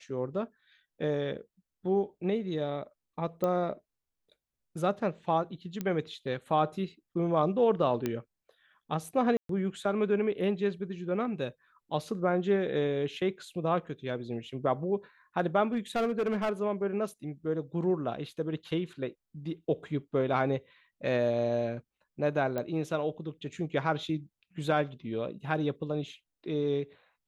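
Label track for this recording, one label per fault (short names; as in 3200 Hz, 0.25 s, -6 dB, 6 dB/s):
3.440000	3.440000	pop -18 dBFS
5.810000	5.810000	pop -20 dBFS
8.060000	8.060000	pop -17 dBFS
9.370000	9.490000	gap 0.123 s
15.730000	16.610000	clipped -25 dBFS
22.580000	22.580000	pop -20 dBFS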